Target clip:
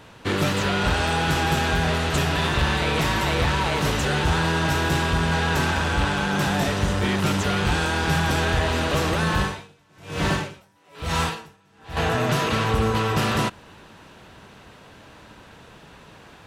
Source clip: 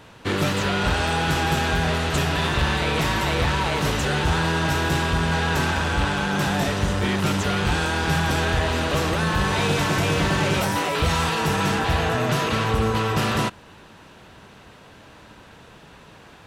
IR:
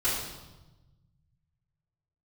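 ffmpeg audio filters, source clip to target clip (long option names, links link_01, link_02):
-filter_complex "[0:a]asettb=1/sr,asplit=3[link_01][link_02][link_03];[link_01]atrim=end=9.384[link_04];[link_02]atrim=start=9.38:end=11.97,asetpts=PTS-STARTPTS,afade=type=in:duration=0.004:curve=qsin,afade=type=out:start_time=2.586:duration=0.004:curve=qsin,aeval=exprs='val(0)*pow(10,-38*(0.5-0.5*cos(2*PI*1.1*n/s))/20)':channel_layout=same[link_05];[link_03]atrim=start=11.966[link_06];[link_04][link_05]acrossfade=duration=0.004:curve1=hsin:curve2=qsin[link_07];[link_07][link_06]acrossfade=duration=0.004:curve1=qsin:curve2=hsin"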